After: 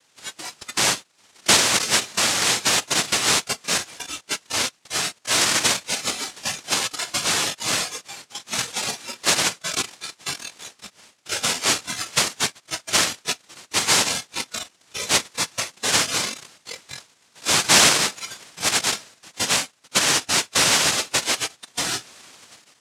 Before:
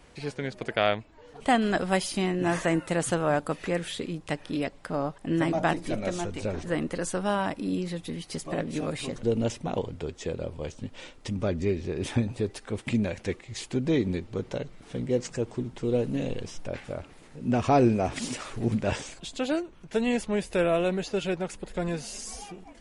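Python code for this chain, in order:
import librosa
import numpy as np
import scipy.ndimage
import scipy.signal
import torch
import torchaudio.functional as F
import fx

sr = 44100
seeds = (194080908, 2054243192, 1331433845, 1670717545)

y = fx.noise_vocoder(x, sr, seeds[0], bands=1)
y = fx.noise_reduce_blind(y, sr, reduce_db=11)
y = y * librosa.db_to_amplitude(5.5)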